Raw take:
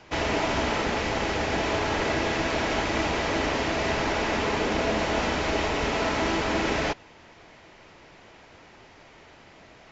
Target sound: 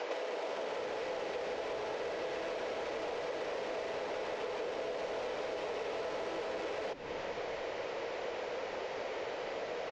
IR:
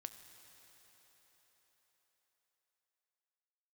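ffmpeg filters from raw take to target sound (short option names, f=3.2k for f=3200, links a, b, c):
-filter_complex "[0:a]asplit=2[a][b];[b]alimiter=limit=-24dB:level=0:latency=1,volume=2.5dB[c];[a][c]amix=inputs=2:normalize=0,asoftclip=type=tanh:threshold=-22.5dB,highpass=f=490:t=q:w=4.9,acompressor=threshold=-33dB:ratio=6,asplit=7[d][e][f][g][h][i][j];[e]adelay=230,afreqshift=-130,volume=-18.5dB[k];[f]adelay=460,afreqshift=-260,volume=-22.4dB[l];[g]adelay=690,afreqshift=-390,volume=-26.3dB[m];[h]adelay=920,afreqshift=-520,volume=-30.1dB[n];[i]adelay=1150,afreqshift=-650,volume=-34dB[o];[j]adelay=1380,afreqshift=-780,volume=-37.9dB[p];[d][k][l][m][n][o][p]amix=inputs=7:normalize=0,acrossover=split=660|3600[q][r][s];[q]acompressor=threshold=-42dB:ratio=4[t];[r]acompressor=threshold=-45dB:ratio=4[u];[s]acompressor=threshold=-55dB:ratio=4[v];[t][u][v]amix=inputs=3:normalize=0,lowpass=5.6k,volume=2.5dB"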